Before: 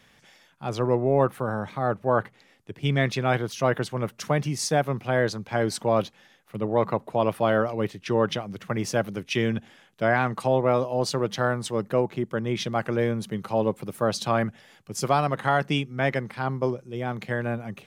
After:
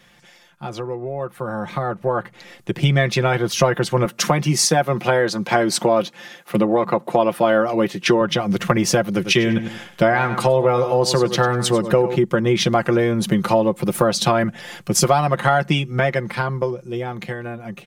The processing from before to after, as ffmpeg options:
ffmpeg -i in.wav -filter_complex "[0:a]asettb=1/sr,asplit=3[link_01][link_02][link_03];[link_01]atrim=end=4.054[link_04];[link_02]atrim=start=4.05:end=8.21,asetpts=PTS-STARTPTS,afade=type=in:duration=0.004:curve=qsin,afade=type=out:start_time=4.156:duration=0.004:curve=qsin,highpass=160[link_05];[link_03]atrim=start=8.206[link_06];[link_04][link_05]acrossfade=duration=0.004:curve1=hsin:curve2=qsin[link_07];[link_07][link_06]acrossfade=duration=0.004:curve1=qsin:curve2=hsin,asettb=1/sr,asplit=3[link_08][link_09][link_10];[link_08]atrim=end=9.124[link_11];[link_09]atrim=start=9.12:end=12.16,asetpts=PTS-STARTPTS,afade=type=in:duration=0.004:curve=qsin,afade=type=out:start_time=3.036:duration=0.004:curve=qsin,aecho=1:1:98|196|294:0.237|0.0522|0.0115,atrim=end_sample=134064[link_12];[link_10]atrim=start=12.156[link_13];[link_11][link_12]acrossfade=duration=0.004:curve1=hsin:curve2=qsin[link_14];[link_14][link_13]acrossfade=duration=0.004:curve1=qsin:curve2=hsin,acompressor=threshold=-32dB:ratio=6,aecho=1:1:5.7:0.63,dynaudnorm=framelen=370:gausssize=11:maxgain=13dB,volume=4dB" out.wav

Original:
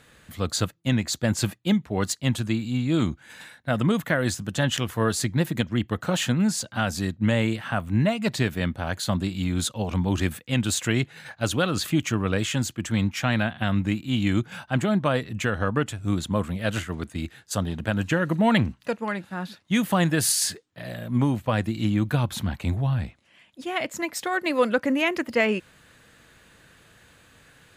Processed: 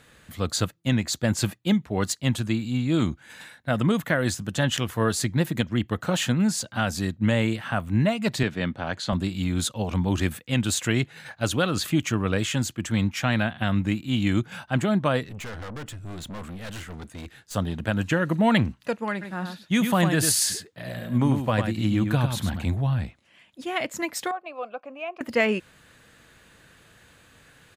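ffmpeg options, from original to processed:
ffmpeg -i in.wav -filter_complex "[0:a]asettb=1/sr,asplit=3[link_01][link_02][link_03];[link_01]atrim=end=8.434[link_04];[link_02]atrim=start=8.43:end=9.13,asetpts=PTS-STARTPTS,afade=type=in:duration=0.004:curve=qsin,afade=type=out:start_time=0.696:duration=0.004:curve=qsin,highpass=120,lowpass=5500[link_05];[link_03]atrim=start=9.126[link_06];[link_04][link_05]acrossfade=duration=0.004:curve1=hsin:curve2=qsin[link_07];[link_07][link_06]acrossfade=duration=0.004:curve1=qsin:curve2=hsin,asettb=1/sr,asplit=3[link_08][link_09][link_10];[link_08]atrim=end=15.244[link_11];[link_09]atrim=start=15.24:end=17.55,asetpts=PTS-STARTPTS,afade=type=in:duration=0.004:curve=qsin,afade=type=out:start_time=2.306:duration=0.004:curve=qsin,aeval=exprs='(tanh(50.1*val(0)+0.3)-tanh(0.3))/50.1':channel_layout=same[link_12];[link_10]atrim=start=17.546[link_13];[link_11][link_12]acrossfade=duration=0.004:curve1=hsin:curve2=qsin[link_14];[link_14][link_13]acrossfade=duration=0.004:curve1=qsin:curve2=hsin,asplit=3[link_15][link_16][link_17];[link_15]afade=type=out:start_time=19.21:duration=0.02[link_18];[link_16]aecho=1:1:100:0.473,afade=type=in:start_time=19.21:duration=0.02,afade=type=out:start_time=22.65:duration=0.02[link_19];[link_17]afade=type=in:start_time=22.65:duration=0.02[link_20];[link_18][link_19][link_20]amix=inputs=3:normalize=0,asettb=1/sr,asplit=3[link_21][link_22][link_23];[link_21]atrim=end=24.314[link_24];[link_22]atrim=start=24.31:end=25.21,asetpts=PTS-STARTPTS,afade=type=in:duration=0.004:curve=qsin,afade=type=out:start_time=0.896:duration=0.004:curve=qsin,asplit=3[link_25][link_26][link_27];[link_25]bandpass=frequency=730:width_type=q:width=8,volume=0dB[link_28];[link_26]bandpass=frequency=1090:width_type=q:width=8,volume=-6dB[link_29];[link_27]bandpass=frequency=2440:width_type=q:width=8,volume=-9dB[link_30];[link_28][link_29][link_30]amix=inputs=3:normalize=0[link_31];[link_23]atrim=start=25.206[link_32];[link_24][link_31]acrossfade=duration=0.004:curve1=hsin:curve2=qsin[link_33];[link_33][link_32]acrossfade=duration=0.004:curve1=qsin:curve2=hsin" out.wav

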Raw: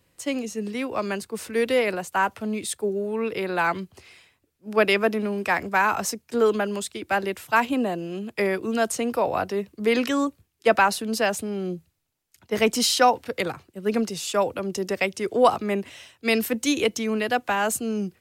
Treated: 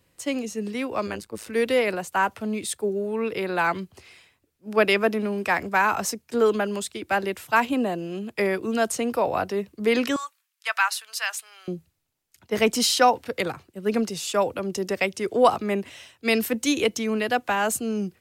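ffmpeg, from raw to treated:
ffmpeg -i in.wav -filter_complex "[0:a]asplit=3[link_01][link_02][link_03];[link_01]afade=type=out:start_time=1.06:duration=0.02[link_04];[link_02]tremolo=f=110:d=0.889,afade=type=in:start_time=1.06:duration=0.02,afade=type=out:start_time=1.46:duration=0.02[link_05];[link_03]afade=type=in:start_time=1.46:duration=0.02[link_06];[link_04][link_05][link_06]amix=inputs=3:normalize=0,asettb=1/sr,asplit=3[link_07][link_08][link_09];[link_07]atrim=end=10.164[link_10];[link_08]atrim=start=10.16:end=11.68,asetpts=PTS-STARTPTS,afade=type=in:duration=0.004:curve=qsin,afade=type=out:start_time=1.516:duration=0.004:curve=qsin,highpass=frequency=1100:width=0.5412,highpass=frequency=1100:width=1.3066[link_11];[link_09]atrim=start=11.676[link_12];[link_10][link_11]acrossfade=duration=0.004:curve1=hsin:curve2=qsin[link_13];[link_13][link_12]acrossfade=duration=0.004:curve1=qsin:curve2=hsin" out.wav

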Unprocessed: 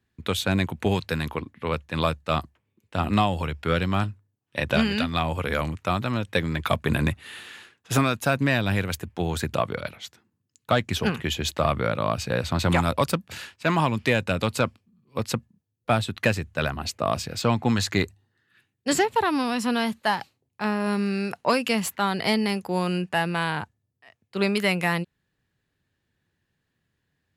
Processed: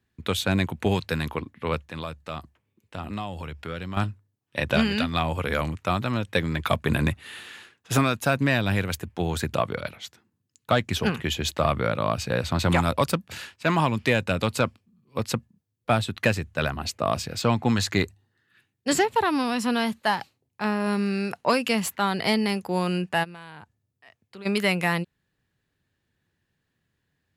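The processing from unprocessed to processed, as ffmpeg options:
ffmpeg -i in.wav -filter_complex "[0:a]asettb=1/sr,asplit=3[link_01][link_02][link_03];[link_01]atrim=end=1.804[link_04];[link_02]atrim=start=1.8:end=3.97,asetpts=PTS-STARTPTS,afade=type=in:duration=0.004:curve=qsin,afade=type=out:start_time=2.166:duration=0.004:curve=qsin,acompressor=threshold=-37dB:ratio=2:attack=3.2:release=140:knee=1:detection=peak[link_05];[link_03]atrim=start=3.966[link_06];[link_04][link_05]acrossfade=duration=0.004:curve1=hsin:curve2=qsin[link_07];[link_07][link_06]acrossfade=duration=0.004:curve1=qsin:curve2=hsin,asplit=3[link_08][link_09][link_10];[link_08]afade=type=out:start_time=23.23:duration=0.02[link_11];[link_09]acompressor=threshold=-44dB:ratio=3:attack=3.2:release=140:knee=1:detection=peak,afade=type=in:start_time=23.23:duration=0.02,afade=type=out:start_time=24.45:duration=0.02[link_12];[link_10]afade=type=in:start_time=24.45:duration=0.02[link_13];[link_11][link_12][link_13]amix=inputs=3:normalize=0" out.wav

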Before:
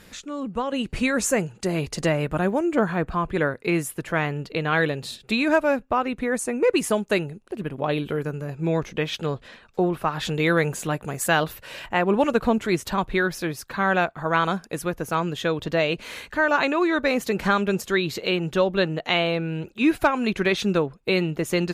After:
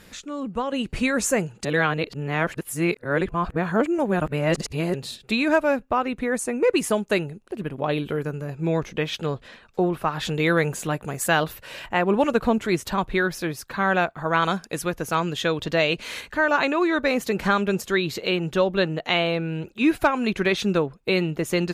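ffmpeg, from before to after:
ffmpeg -i in.wav -filter_complex "[0:a]asettb=1/sr,asplit=3[link_01][link_02][link_03];[link_01]atrim=end=14.424[link_04];[link_02]atrim=start=14.42:end=16.21,asetpts=PTS-STARTPTS,afade=type=in:duration=0.004:curve=qsin,afade=type=out:start_time=1.786:duration=0.004:curve=qsin,equalizer=frequency=5000:width=0.4:gain=4.5[link_05];[link_03]atrim=start=16.206[link_06];[link_04][link_05]acrossfade=duration=0.004:curve1=hsin:curve2=qsin[link_07];[link_07][link_06]acrossfade=duration=0.004:curve1=qsin:curve2=hsin,asplit=3[link_08][link_09][link_10];[link_08]atrim=end=1.652[link_11];[link_09]atrim=start=1.648:end=4.942,asetpts=PTS-STARTPTS,areverse[link_12];[link_10]atrim=start=4.938[link_13];[link_11][link_12]acrossfade=duration=0.004:curve1=hsin:curve2=hsin[link_14];[link_14][link_13]acrossfade=duration=0.004:curve1=hsin:curve2=hsin" out.wav

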